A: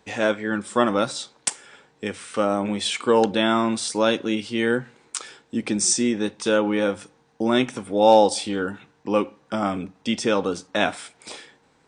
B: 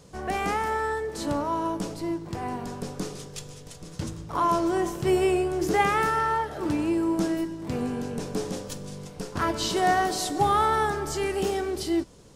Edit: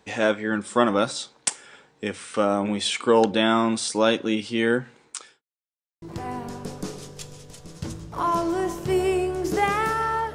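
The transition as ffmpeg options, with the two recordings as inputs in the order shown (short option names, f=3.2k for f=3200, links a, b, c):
-filter_complex "[0:a]apad=whole_dur=10.34,atrim=end=10.34,asplit=2[a][b];[a]atrim=end=5.42,asetpts=PTS-STARTPTS,afade=t=out:st=4.96:d=0.46[c];[b]atrim=start=5.42:end=6.02,asetpts=PTS-STARTPTS,volume=0[d];[1:a]atrim=start=2.19:end=6.51,asetpts=PTS-STARTPTS,afade=t=in:d=0.004:c=hsin[e];[c][d][e]concat=n=3:v=0:a=1"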